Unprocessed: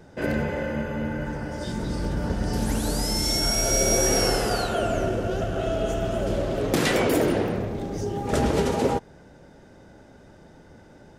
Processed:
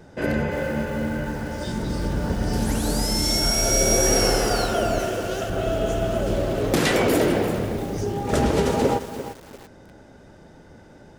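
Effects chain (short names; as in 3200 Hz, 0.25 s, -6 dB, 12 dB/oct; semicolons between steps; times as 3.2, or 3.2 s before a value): 4.99–5.5 tilt +2.5 dB/oct; lo-fi delay 0.345 s, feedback 35%, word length 6-bit, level -11 dB; gain +2 dB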